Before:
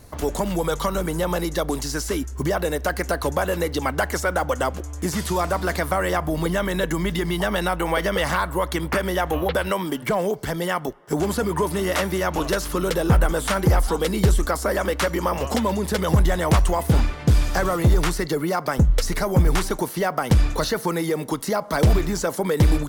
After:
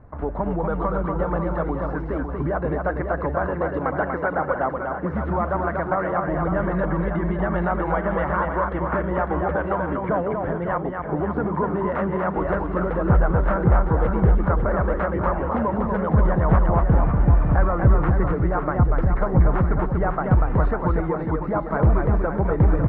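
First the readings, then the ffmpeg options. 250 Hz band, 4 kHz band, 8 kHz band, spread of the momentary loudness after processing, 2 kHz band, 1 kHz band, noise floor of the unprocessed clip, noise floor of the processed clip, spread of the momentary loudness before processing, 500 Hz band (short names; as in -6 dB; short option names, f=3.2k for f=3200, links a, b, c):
+0.5 dB, under -25 dB, under -40 dB, 6 LU, -3.0 dB, +1.0 dB, -34 dBFS, -29 dBFS, 6 LU, -0.5 dB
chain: -filter_complex "[0:a]lowpass=f=1.5k:w=0.5412,lowpass=f=1.5k:w=1.3066,equalizer=f=390:w=1.3:g=-4,asplit=2[a][b];[b]aecho=0:1:240|552|957.6|1485|2170:0.631|0.398|0.251|0.158|0.1[c];[a][c]amix=inputs=2:normalize=0"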